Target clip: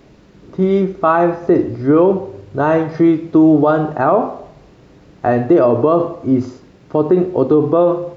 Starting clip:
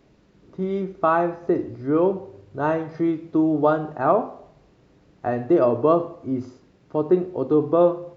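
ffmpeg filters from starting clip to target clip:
ffmpeg -i in.wav -af "alimiter=level_in=14dB:limit=-1dB:release=50:level=0:latency=1,volume=-2.5dB" out.wav

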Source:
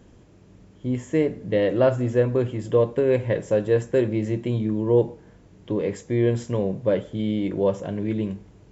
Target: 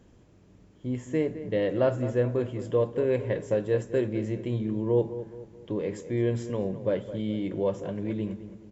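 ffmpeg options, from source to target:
ffmpeg -i in.wav -filter_complex "[0:a]asplit=2[link_01][link_02];[link_02]adelay=213,lowpass=frequency=2200:poles=1,volume=-12.5dB,asplit=2[link_03][link_04];[link_04]adelay=213,lowpass=frequency=2200:poles=1,volume=0.45,asplit=2[link_05][link_06];[link_06]adelay=213,lowpass=frequency=2200:poles=1,volume=0.45,asplit=2[link_07][link_08];[link_08]adelay=213,lowpass=frequency=2200:poles=1,volume=0.45[link_09];[link_01][link_03][link_05][link_07][link_09]amix=inputs=5:normalize=0,volume=-5.5dB" out.wav

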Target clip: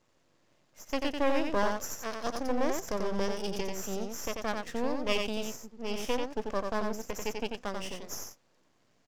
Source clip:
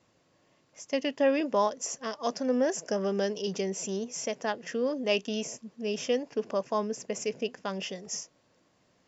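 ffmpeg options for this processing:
ffmpeg -i in.wav -filter_complex "[0:a]aeval=exprs='max(val(0),0)':channel_layout=same,asplit=2[link_01][link_02];[link_02]aecho=0:1:90:0.596[link_03];[link_01][link_03]amix=inputs=2:normalize=0" out.wav

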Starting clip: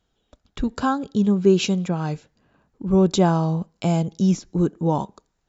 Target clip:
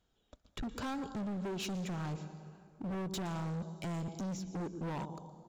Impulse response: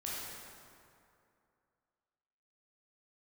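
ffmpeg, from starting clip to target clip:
-filter_complex "[0:a]asplit=2[link_01][link_02];[link_02]adelay=123,lowpass=frequency=2000:poles=1,volume=-20dB,asplit=2[link_03][link_04];[link_04]adelay=123,lowpass=frequency=2000:poles=1,volume=0.43,asplit=2[link_05][link_06];[link_06]adelay=123,lowpass=frequency=2000:poles=1,volume=0.43[link_07];[link_01][link_03][link_05][link_07]amix=inputs=4:normalize=0,acompressor=threshold=-23dB:ratio=6,asplit=2[link_08][link_09];[1:a]atrim=start_sample=2205,highshelf=frequency=5000:gain=11,adelay=117[link_10];[link_09][link_10]afir=irnorm=-1:irlink=0,volume=-18.5dB[link_11];[link_08][link_11]amix=inputs=2:normalize=0,asoftclip=type=hard:threshold=-30.5dB,volume=-5.5dB"

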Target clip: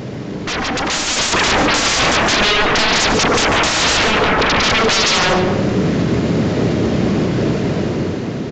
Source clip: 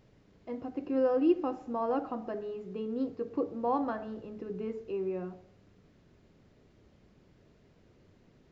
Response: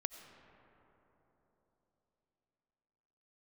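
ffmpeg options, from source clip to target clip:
-filter_complex "[0:a]asettb=1/sr,asplit=3[link_01][link_02][link_03];[link_01]atrim=end=0.604[link_04];[link_02]atrim=start=0.6:end=1.35,asetpts=PTS-STARTPTS,afade=type=in:duration=0.004:curve=qsin,afade=type=out:start_time=0.746:duration=0.004:curve=qsin,asubboost=boost=6.5:cutoff=190[link_05];[link_03]atrim=start=1.346[link_06];[link_04][link_05]acrossfade=duration=0.004:curve1=hsin:curve2=qsin[link_07];[link_07][link_06]acrossfade=duration=0.004:curve1=qsin:curve2=hsin,asplit=2[link_08][link_09];[link_09]acompressor=threshold=-43dB:ratio=6,volume=0dB[link_10];[link_08][link_10]amix=inputs=2:normalize=0,highpass=130,lowshelf=frequency=460:gain=5.5,aeval=exprs='0.0596*sin(PI/2*8.91*val(0)/0.0596)':channel_layout=same,aresample=16000,aresample=44100[link_11];[1:a]atrim=start_sample=2205,afade=type=out:start_time=0.31:duration=0.01,atrim=end_sample=14112[link_12];[link_11][link_12]afir=irnorm=-1:irlink=0,dynaudnorm=framelen=370:gausssize=7:maxgain=10dB,aecho=1:1:144:0.316,alimiter=limit=-14.5dB:level=0:latency=1:release=173,volume=7.5dB"

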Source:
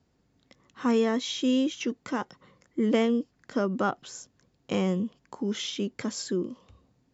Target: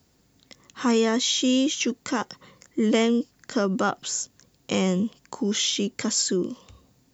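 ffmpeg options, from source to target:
ffmpeg -i in.wav -filter_complex "[0:a]aemphasis=mode=production:type=75kf,asplit=2[link_01][link_02];[link_02]alimiter=limit=-23.5dB:level=0:latency=1,volume=-2dB[link_03];[link_01][link_03]amix=inputs=2:normalize=0" out.wav

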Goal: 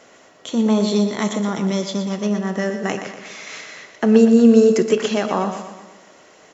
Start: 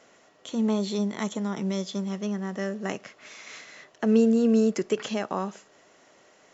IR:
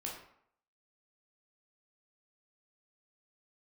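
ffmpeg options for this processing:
-filter_complex "[0:a]aecho=1:1:120|240|360|480|600|720:0.355|0.181|0.0923|0.0471|0.024|0.0122,asplit=2[link_01][link_02];[1:a]atrim=start_sample=2205[link_03];[link_02][link_03]afir=irnorm=-1:irlink=0,volume=-6.5dB[link_04];[link_01][link_04]amix=inputs=2:normalize=0,volume=6dB"

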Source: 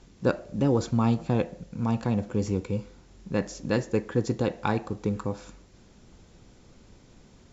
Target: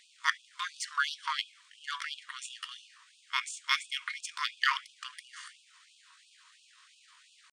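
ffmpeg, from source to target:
ffmpeg -i in.wav -filter_complex "[0:a]asetrate=55563,aresample=44100,atempo=0.793701,equalizer=frequency=3500:width_type=o:width=0.53:gain=4,asplit=2[link_01][link_02];[link_02]adynamicsmooth=sensitivity=7.5:basefreq=5900,volume=1.5dB[link_03];[link_01][link_03]amix=inputs=2:normalize=0,afftfilt=real='re*gte(b*sr/1024,910*pow(2500/910,0.5+0.5*sin(2*PI*2.9*pts/sr)))':imag='im*gte(b*sr/1024,910*pow(2500/910,0.5+0.5*sin(2*PI*2.9*pts/sr)))':win_size=1024:overlap=0.75" out.wav

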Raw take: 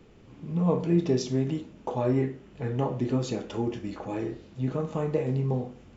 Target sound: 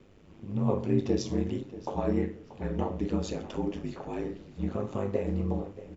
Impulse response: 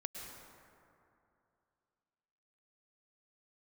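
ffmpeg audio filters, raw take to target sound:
-filter_complex "[0:a]aeval=exprs='val(0)*sin(2*PI*50*n/s)':channel_layout=same,asplit=2[link_01][link_02];[link_02]adelay=633,lowpass=frequency=4500:poles=1,volume=-15.5dB,asplit=2[link_03][link_04];[link_04]adelay=633,lowpass=frequency=4500:poles=1,volume=0.36,asplit=2[link_05][link_06];[link_06]adelay=633,lowpass=frequency=4500:poles=1,volume=0.36[link_07];[link_01][link_03][link_05][link_07]amix=inputs=4:normalize=0"

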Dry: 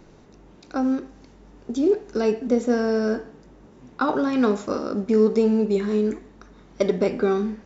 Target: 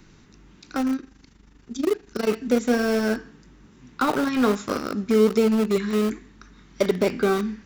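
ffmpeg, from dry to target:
ffmpeg -i in.wav -filter_complex "[0:a]asettb=1/sr,asplit=3[link_01][link_02][link_03];[link_01]atrim=end=0.964[link_04];[link_02]atrim=start=0.96:end=2.29,asetpts=PTS-STARTPTS,afade=type=in:duration=0.004:curve=qsin,afade=type=out:start_time=1.326:duration=0.004:curve=qsin,tremolo=f=25:d=0.75[link_05];[link_03]atrim=start=2.286[link_06];[link_04][link_05]acrossfade=duration=0.004:curve1=hsin:curve2=qsin[link_07];[link_07][link_06]acrossfade=duration=0.004:curve1=qsin:curve2=hsin,acrossover=split=370|1100[link_08][link_09][link_10];[link_09]aeval=exprs='val(0)*gte(abs(val(0)),0.0473)':channel_layout=same[link_11];[link_10]aeval=exprs='0.178*(cos(1*acos(clip(val(0)/0.178,-1,1)))-cos(1*PI/2))+0.02*(cos(5*acos(clip(val(0)/0.178,-1,1)))-cos(5*PI/2))':channel_layout=same[link_12];[link_08][link_11][link_12]amix=inputs=3:normalize=0" out.wav

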